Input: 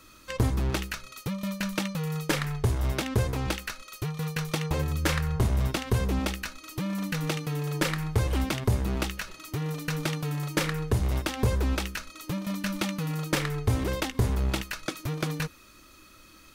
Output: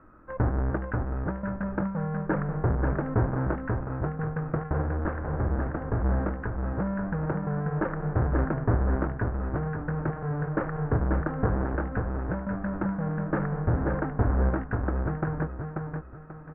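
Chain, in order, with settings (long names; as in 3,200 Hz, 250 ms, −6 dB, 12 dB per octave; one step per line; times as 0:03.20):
each half-wave held at its own peak
0:05.04–0:06.04: tube saturation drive 19 dB, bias 0.6
elliptic low-pass filter 1,600 Hz, stop band 70 dB
repeating echo 537 ms, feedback 31%, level −4 dB
level −3.5 dB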